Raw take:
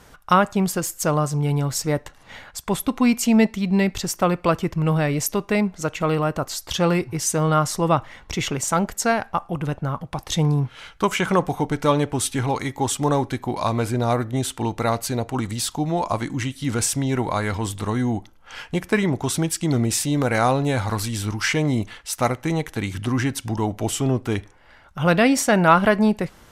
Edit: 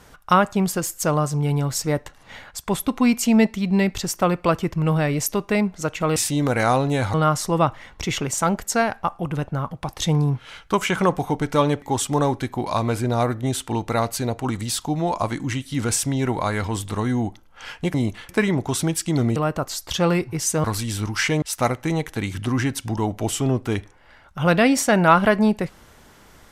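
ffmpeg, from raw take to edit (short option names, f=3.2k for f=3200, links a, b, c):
-filter_complex "[0:a]asplit=9[a][b][c][d][e][f][g][h][i];[a]atrim=end=6.162[j];[b]atrim=start=19.908:end=20.892[k];[c]atrim=start=7.438:end=12.122[l];[d]atrim=start=12.718:end=18.842[m];[e]atrim=start=21.668:end=22.022[n];[f]atrim=start=18.838:end=19.912[o];[g]atrim=start=6.158:end=7.442[p];[h]atrim=start=20.888:end=21.672[q];[i]atrim=start=22.018[r];[j][k]acrossfade=d=0.004:c1=hsin:c2=hsin[s];[s][l]acrossfade=d=0.004:c1=hsin:c2=hsin[t];[t][m]acrossfade=d=0.004:c1=hsin:c2=hsin[u];[u][n]acrossfade=d=0.004:c1=hsin:c2=hsin[v];[v][o]acrossfade=d=0.004:c1=hsin:c2=hsin[w];[w][p]acrossfade=d=0.004:c1=hsin:c2=hsin[x];[x][q]acrossfade=d=0.004:c1=hsin:c2=hsin[y];[y][r]acrossfade=d=0.004:c1=hsin:c2=hsin"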